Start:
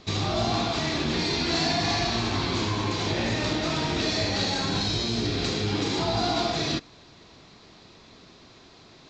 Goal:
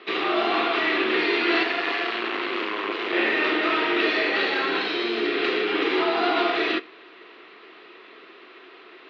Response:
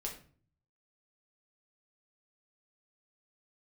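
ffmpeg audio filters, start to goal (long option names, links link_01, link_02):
-filter_complex "[0:a]asettb=1/sr,asplit=3[link_01][link_02][link_03];[link_01]atrim=end=1.634[link_04];[link_02]atrim=start=1.63:end=3.13,asetpts=PTS-STARTPTS,afade=type=in:duration=0.004:curve=qsin,afade=type=out:start_time=1.496:duration=0.004:curve=qsin,aeval=exprs='max(val(0),0)':channel_layout=same[link_05];[link_03]atrim=start=3.126[link_06];[link_04][link_05]acrossfade=duration=0.004:curve1=hsin:curve2=qsin[link_07];[link_07][link_06]acrossfade=duration=0.004:curve1=qsin:curve2=hsin,highpass=frequency=350:width=0.5412,highpass=frequency=350:width=1.3066,equalizer=frequency=380:width_type=q:width=4:gain=6,equalizer=frequency=590:width_type=q:width=4:gain=-6,equalizer=frequency=850:width_type=q:width=4:gain=-6,equalizer=frequency=1300:width_type=q:width=4:gain=5,equalizer=frequency=1900:width_type=q:width=4:gain=5,equalizer=frequency=2800:width_type=q:width=4:gain=6,lowpass=frequency=3000:width=0.5412,lowpass=frequency=3000:width=1.3066,asplit=2[link_08][link_09];[1:a]atrim=start_sample=2205[link_10];[link_09][link_10]afir=irnorm=-1:irlink=0,volume=-13.5dB[link_11];[link_08][link_11]amix=inputs=2:normalize=0,volume=5dB"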